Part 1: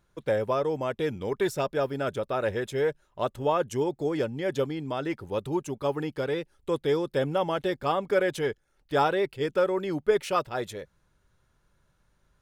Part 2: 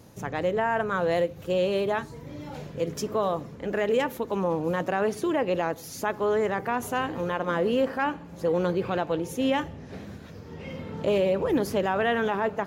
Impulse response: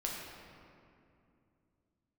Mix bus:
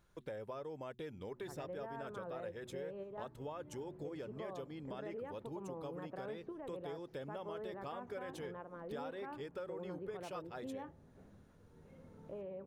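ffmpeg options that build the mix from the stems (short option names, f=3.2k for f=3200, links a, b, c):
-filter_complex "[0:a]bandreject=f=122.2:t=h:w=4,bandreject=f=244.4:t=h:w=4,bandreject=f=366.6:t=h:w=4,acompressor=threshold=-56dB:ratio=1.5,volume=-2.5dB,asplit=2[a][b];[1:a]lowpass=1.3k,adelay=1250,volume=-15dB[c];[b]apad=whole_len=613760[d];[c][d]sidechaingate=range=-6dB:threshold=-57dB:ratio=16:detection=peak[e];[a][e]amix=inputs=2:normalize=0,acompressor=threshold=-43dB:ratio=3"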